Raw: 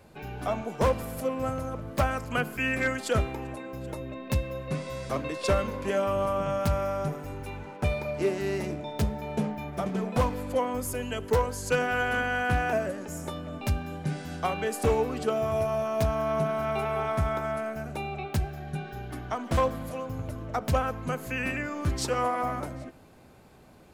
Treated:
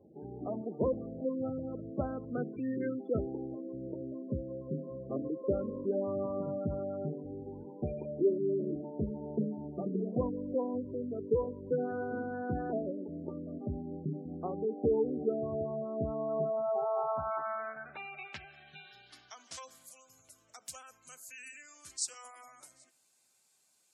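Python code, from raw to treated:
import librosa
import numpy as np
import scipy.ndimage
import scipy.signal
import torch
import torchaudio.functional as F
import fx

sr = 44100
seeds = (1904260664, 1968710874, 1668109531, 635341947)

y = fx.bass_treble(x, sr, bass_db=5, treble_db=3)
y = fx.filter_sweep_bandpass(y, sr, from_hz=340.0, to_hz=7700.0, start_s=15.98, end_s=19.84, q=1.9)
y = fx.spec_gate(y, sr, threshold_db=-20, keep='strong')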